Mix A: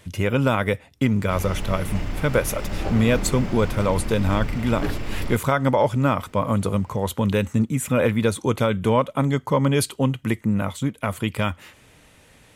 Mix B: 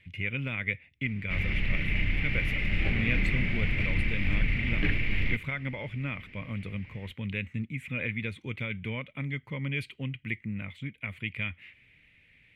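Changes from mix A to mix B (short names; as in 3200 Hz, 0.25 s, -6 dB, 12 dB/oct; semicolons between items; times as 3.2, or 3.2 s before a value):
speech -11.5 dB; master: add EQ curve 150 Hz 0 dB, 920 Hz -15 dB, 1400 Hz -8 dB, 2200 Hz +14 dB, 6100 Hz -19 dB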